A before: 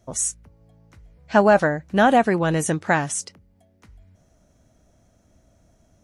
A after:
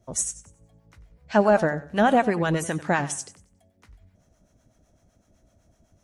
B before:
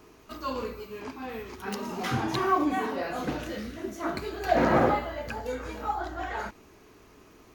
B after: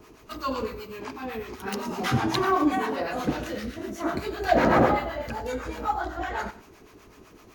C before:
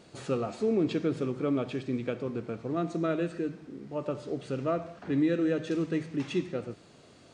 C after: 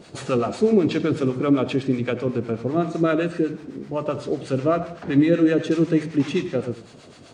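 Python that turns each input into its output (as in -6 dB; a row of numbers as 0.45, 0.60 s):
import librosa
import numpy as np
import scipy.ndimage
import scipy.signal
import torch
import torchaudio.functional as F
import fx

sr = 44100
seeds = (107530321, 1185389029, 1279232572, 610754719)

y = fx.harmonic_tremolo(x, sr, hz=7.9, depth_pct=70, crossover_hz=680.0)
y = fx.echo_warbled(y, sr, ms=93, feedback_pct=30, rate_hz=2.8, cents=78, wet_db=-16.0)
y = y * 10.0 ** (-6 / 20.0) / np.max(np.abs(y))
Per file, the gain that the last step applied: +0.5, +6.0, +12.5 dB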